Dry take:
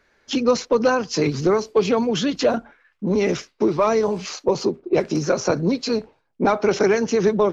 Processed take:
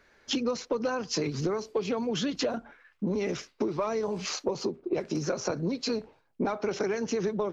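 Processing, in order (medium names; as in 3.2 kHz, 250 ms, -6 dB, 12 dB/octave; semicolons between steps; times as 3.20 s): compression 6:1, threshold -27 dBFS, peak gain reduction 13.5 dB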